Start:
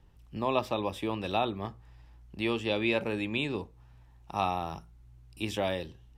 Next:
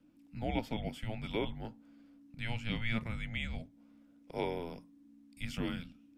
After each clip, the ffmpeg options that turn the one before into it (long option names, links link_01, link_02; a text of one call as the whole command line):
ffmpeg -i in.wav -af "afreqshift=-340,volume=-6dB" out.wav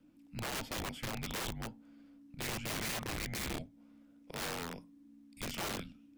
ffmpeg -i in.wav -af "aeval=exprs='(mod(50.1*val(0)+1,2)-1)/50.1':channel_layout=same,volume=1dB" out.wav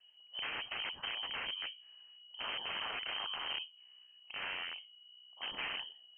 ffmpeg -i in.wav -af "lowpass=frequency=2700:width_type=q:width=0.5098,lowpass=frequency=2700:width_type=q:width=0.6013,lowpass=frequency=2700:width_type=q:width=0.9,lowpass=frequency=2700:width_type=q:width=2.563,afreqshift=-3200" out.wav